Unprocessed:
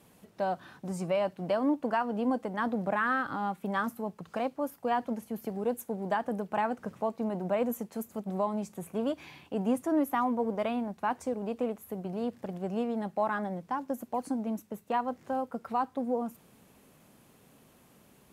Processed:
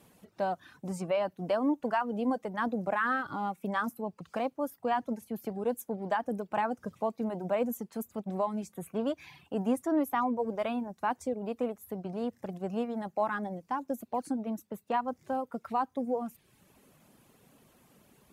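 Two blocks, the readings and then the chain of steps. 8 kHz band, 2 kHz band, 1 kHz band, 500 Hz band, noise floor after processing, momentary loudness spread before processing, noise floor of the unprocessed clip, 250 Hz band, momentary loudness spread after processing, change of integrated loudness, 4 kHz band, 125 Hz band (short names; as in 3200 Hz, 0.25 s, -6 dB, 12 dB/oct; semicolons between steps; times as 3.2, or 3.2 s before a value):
-0.5 dB, -0.5 dB, -0.5 dB, -0.5 dB, -68 dBFS, 8 LU, -61 dBFS, -1.0 dB, 9 LU, -1.0 dB, -0.5 dB, -2.0 dB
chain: reverb removal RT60 0.71 s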